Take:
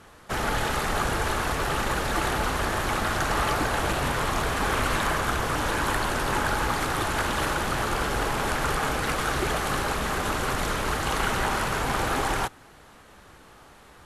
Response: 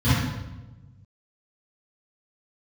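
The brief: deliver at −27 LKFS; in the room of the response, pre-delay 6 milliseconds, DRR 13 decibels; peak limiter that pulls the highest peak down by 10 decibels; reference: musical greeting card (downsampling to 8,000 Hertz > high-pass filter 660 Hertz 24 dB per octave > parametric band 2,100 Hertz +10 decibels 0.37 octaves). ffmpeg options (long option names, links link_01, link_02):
-filter_complex "[0:a]alimiter=limit=-22dB:level=0:latency=1,asplit=2[link_01][link_02];[1:a]atrim=start_sample=2205,adelay=6[link_03];[link_02][link_03]afir=irnorm=-1:irlink=0,volume=-30dB[link_04];[link_01][link_04]amix=inputs=2:normalize=0,aresample=8000,aresample=44100,highpass=frequency=660:width=0.5412,highpass=frequency=660:width=1.3066,equalizer=frequency=2100:width_type=o:width=0.37:gain=10,volume=3dB"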